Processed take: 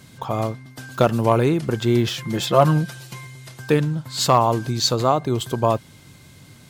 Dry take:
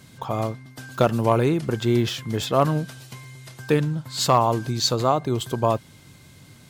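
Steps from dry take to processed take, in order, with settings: 2.17–3.27 comb 5.7 ms, depth 67%; gain +2 dB

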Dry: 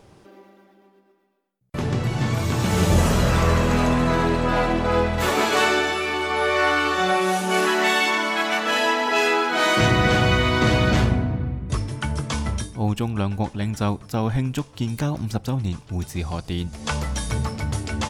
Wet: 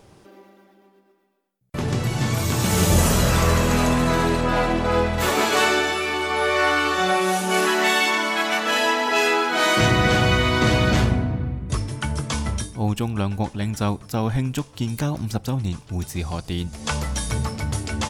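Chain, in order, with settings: high shelf 6000 Hz +4.5 dB, from 1.88 s +12 dB, from 4.41 s +5 dB

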